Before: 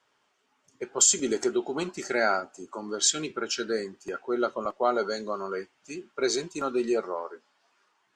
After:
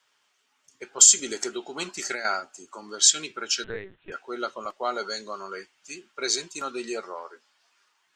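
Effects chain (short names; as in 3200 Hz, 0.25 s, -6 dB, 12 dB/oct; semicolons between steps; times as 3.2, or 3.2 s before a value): tilt shelf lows -7.5 dB, about 1200 Hz; 1.8–2.25 negative-ratio compressor -30 dBFS, ratio -1; 3.64–4.12 LPC vocoder at 8 kHz pitch kept; gain -1 dB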